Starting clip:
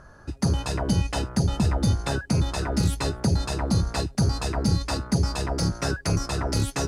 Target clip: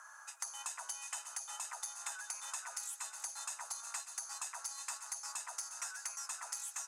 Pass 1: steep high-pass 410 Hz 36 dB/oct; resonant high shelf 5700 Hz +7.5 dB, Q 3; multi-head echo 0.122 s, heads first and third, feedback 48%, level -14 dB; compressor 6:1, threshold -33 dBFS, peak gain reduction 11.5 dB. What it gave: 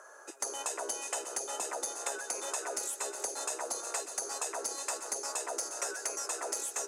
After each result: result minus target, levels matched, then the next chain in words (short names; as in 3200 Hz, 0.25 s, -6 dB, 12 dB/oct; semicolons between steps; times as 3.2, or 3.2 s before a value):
500 Hz band +18.0 dB; compressor: peak gain reduction -6 dB
steep high-pass 880 Hz 36 dB/oct; resonant high shelf 5700 Hz +7.5 dB, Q 3; multi-head echo 0.122 s, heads first and third, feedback 48%, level -14 dB; compressor 6:1, threshold -33 dBFS, peak gain reduction 11 dB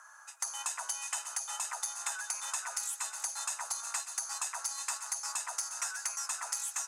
compressor: peak gain reduction -6.5 dB
steep high-pass 880 Hz 36 dB/oct; resonant high shelf 5700 Hz +7.5 dB, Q 3; multi-head echo 0.122 s, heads first and third, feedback 48%, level -14 dB; compressor 6:1, threshold -41 dBFS, peak gain reduction 18 dB